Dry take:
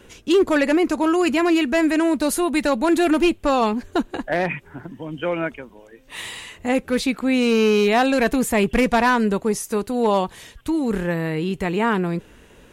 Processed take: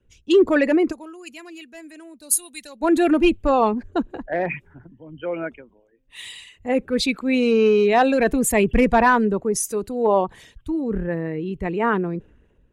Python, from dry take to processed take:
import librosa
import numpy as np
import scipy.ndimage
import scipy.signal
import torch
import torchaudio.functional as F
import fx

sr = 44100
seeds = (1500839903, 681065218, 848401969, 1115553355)

y = fx.envelope_sharpen(x, sr, power=1.5)
y = fx.pre_emphasis(y, sr, coefficient=0.8, at=(0.91, 2.8), fade=0.02)
y = fx.band_widen(y, sr, depth_pct=70)